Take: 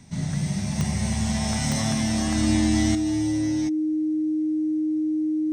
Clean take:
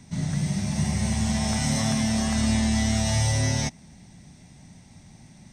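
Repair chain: de-click; band-stop 310 Hz, Q 30; gain correction +10 dB, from 2.95 s

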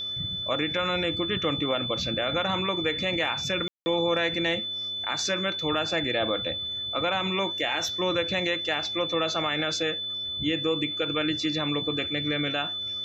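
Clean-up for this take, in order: de-click; de-hum 106.1 Hz, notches 6; band-stop 3.5 kHz, Q 30; room tone fill 3.68–3.86 s

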